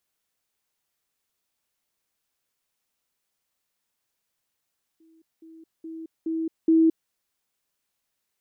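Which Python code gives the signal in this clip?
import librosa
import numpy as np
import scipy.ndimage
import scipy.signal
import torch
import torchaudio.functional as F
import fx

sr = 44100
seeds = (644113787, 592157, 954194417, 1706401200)

y = fx.level_ladder(sr, hz=324.0, from_db=-54.5, step_db=10.0, steps=5, dwell_s=0.22, gap_s=0.2)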